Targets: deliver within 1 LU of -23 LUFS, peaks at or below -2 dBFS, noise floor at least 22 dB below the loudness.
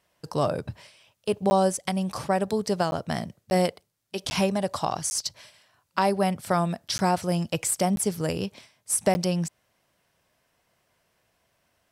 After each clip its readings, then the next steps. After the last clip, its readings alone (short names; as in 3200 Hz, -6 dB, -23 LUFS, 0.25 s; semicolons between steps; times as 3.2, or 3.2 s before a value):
dropouts 8; longest dropout 10 ms; loudness -26.5 LUFS; peak -9.0 dBFS; loudness target -23.0 LUFS
-> interpolate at 1.5/2.91/3.5/4.3/5.1/6.98/7.96/9.14, 10 ms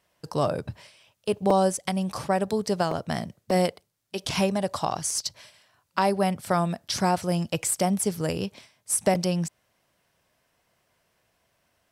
dropouts 0; loudness -26.5 LUFS; peak -8.5 dBFS; loudness target -23.0 LUFS
-> gain +3.5 dB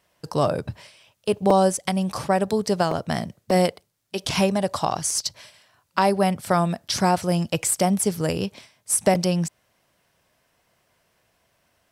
loudness -23.0 LUFS; peak -5.0 dBFS; noise floor -69 dBFS